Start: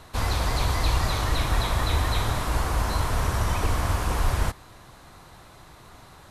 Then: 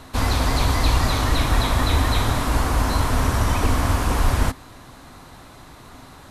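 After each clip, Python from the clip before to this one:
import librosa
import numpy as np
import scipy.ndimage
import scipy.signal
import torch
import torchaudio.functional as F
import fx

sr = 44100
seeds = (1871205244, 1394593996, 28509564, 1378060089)

y = fx.peak_eq(x, sr, hz=260.0, db=11.0, octaves=0.24)
y = F.gain(torch.from_numpy(y), 4.5).numpy()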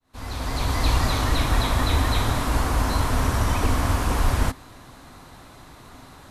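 y = fx.fade_in_head(x, sr, length_s=0.9)
y = F.gain(torch.from_numpy(y), -2.0).numpy()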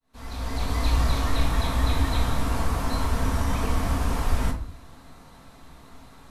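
y = fx.room_shoebox(x, sr, seeds[0], volume_m3=370.0, walls='furnished', distance_m=1.6)
y = F.gain(torch.from_numpy(y), -7.0).numpy()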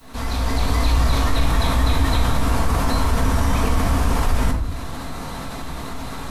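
y = fx.env_flatten(x, sr, amount_pct=50)
y = F.gain(torch.from_numpy(y), 2.5).numpy()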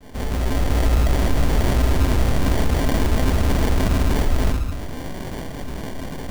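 y = fx.sample_hold(x, sr, seeds[1], rate_hz=1300.0, jitter_pct=0)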